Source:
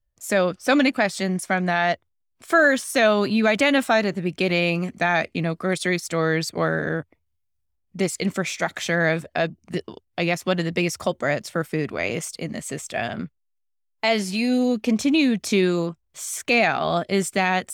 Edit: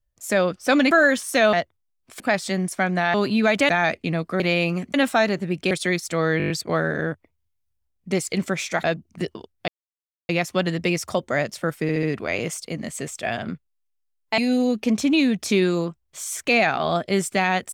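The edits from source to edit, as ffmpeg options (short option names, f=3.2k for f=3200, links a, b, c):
-filter_complex "[0:a]asplit=21[a][b][c][d][e][f][g][h][i][j][k][l][m][n][o][p][q][r][s][t][u];[a]atrim=end=0.912[v];[b]atrim=start=2.518:end=3.142[w];[c]atrim=start=1.848:end=2.522[x];[d]atrim=start=0.908:end=1.852[y];[e]atrim=start=3.138:end=3.692[z];[f]atrim=start=4.998:end=5.712[aa];[g]atrim=start=4.458:end=5.002[ab];[h]atrim=start=3.688:end=4.462[ac];[i]atrim=start=5.708:end=6.402[ad];[j]atrim=start=6.378:end=6.402[ae];[k]atrim=start=6.378:end=6.402[af];[l]atrim=start=6.378:end=6.402[ag];[m]atrim=start=6.378:end=6.402[ah];[n]atrim=start=6.378:end=6.402[ai];[o]atrim=start=6.378:end=8.722[aj];[p]atrim=start=9.368:end=10.21,asetpts=PTS-STARTPTS,afade=t=out:st=0.838:d=0.004:c=hsin,apad=pad_dur=0.61[ak];[q]atrim=start=10.21:end=11.812,asetpts=PTS-STARTPTS,afade=t=in:d=0.004:c=hsin[al];[r]atrim=start=11.738:end=11.812[am];[s]atrim=start=11.738:end=11.812[an];[t]atrim=start=11.738:end=14.092[ao];[u]atrim=start=14.388[ap];[v][w]acrossfade=d=0.004:c1=hsin:c2=hsin[aq];[aq][x]acrossfade=d=0.004:c1=hsin:c2=hsin[ar];[ar][y]acrossfade=d=0.004:c1=hsin:c2=hsin[as];[as][z]acrossfade=d=0.004:c1=hsin:c2=hsin[at];[at][aa]acrossfade=d=0.004:c1=hsin:c2=hsin[au];[au][ab]acrossfade=d=0.004:c1=hsin:c2=hsin[av];[av][ac]acrossfade=d=0.004:c1=hsin:c2=hsin[aw];[aw][ad]acrossfade=d=0.004:c1=hsin:c2=hsin[ax];[ax][ae]acrossfade=d=0.004:c1=hsin:c2=hsin[ay];[ay][af]acrossfade=d=0.004:c1=hsin:c2=hsin[az];[az][ag]acrossfade=d=0.004:c1=hsin:c2=hsin[ba];[ba][ah]acrossfade=d=0.004:c1=hsin:c2=hsin[bb];[bb][ai]acrossfade=d=0.004:c1=hsin:c2=hsin[bc];[bc][aj]acrossfade=d=0.004:c1=hsin:c2=hsin[bd];[ak][al]concat=n=2:v=0:a=1[be];[bd][be]acrossfade=d=0.004:c1=hsin:c2=hsin[bf];[bf][am]acrossfade=d=0.004:c1=hsin:c2=hsin[bg];[bg][an]acrossfade=d=0.004:c1=hsin:c2=hsin[bh];[bh][ao]acrossfade=d=0.004:c1=hsin:c2=hsin[bi];[bi][ap]acrossfade=d=0.004:c1=hsin:c2=hsin"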